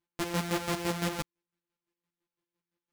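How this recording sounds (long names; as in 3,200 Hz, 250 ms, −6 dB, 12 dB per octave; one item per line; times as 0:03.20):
a buzz of ramps at a fixed pitch in blocks of 256 samples
chopped level 5.9 Hz, depth 60%, duty 35%
aliases and images of a low sample rate 16,000 Hz, jitter 0%
a shimmering, thickened sound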